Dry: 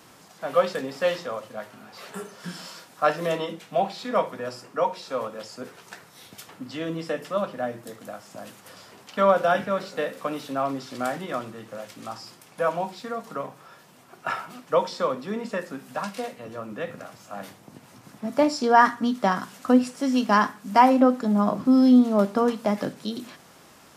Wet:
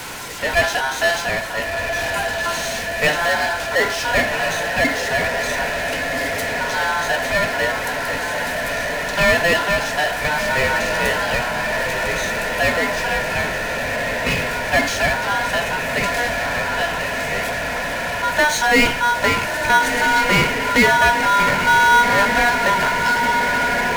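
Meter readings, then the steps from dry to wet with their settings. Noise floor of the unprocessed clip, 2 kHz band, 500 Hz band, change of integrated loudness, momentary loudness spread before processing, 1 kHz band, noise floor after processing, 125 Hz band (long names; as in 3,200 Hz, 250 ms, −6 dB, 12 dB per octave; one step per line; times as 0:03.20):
−52 dBFS, +18.0 dB, +4.0 dB, +6.5 dB, 21 LU, +7.0 dB, −24 dBFS, +8.5 dB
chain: ring modulation 1,200 Hz
feedback delay with all-pass diffusion 1,411 ms, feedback 75%, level −10.5 dB
power curve on the samples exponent 0.5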